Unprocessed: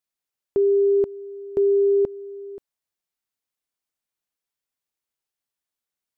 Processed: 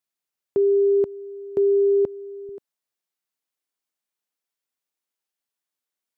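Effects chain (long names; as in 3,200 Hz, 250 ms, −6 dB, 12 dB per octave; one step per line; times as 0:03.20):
high-pass filter 84 Hz, from 0:02.49 180 Hz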